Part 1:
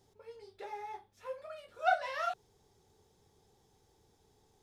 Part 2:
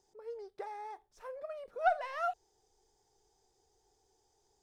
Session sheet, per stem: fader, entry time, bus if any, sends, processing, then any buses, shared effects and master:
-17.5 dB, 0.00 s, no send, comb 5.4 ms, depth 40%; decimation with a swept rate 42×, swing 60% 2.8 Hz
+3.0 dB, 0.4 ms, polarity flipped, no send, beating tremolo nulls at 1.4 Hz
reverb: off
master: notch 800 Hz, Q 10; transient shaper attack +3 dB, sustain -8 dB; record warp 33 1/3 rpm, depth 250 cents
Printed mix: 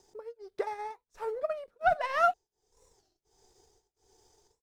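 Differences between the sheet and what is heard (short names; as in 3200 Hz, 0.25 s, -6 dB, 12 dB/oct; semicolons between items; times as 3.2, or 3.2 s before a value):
stem 1 -17.5 dB -> -25.0 dB; stem 2 +3.0 dB -> +10.0 dB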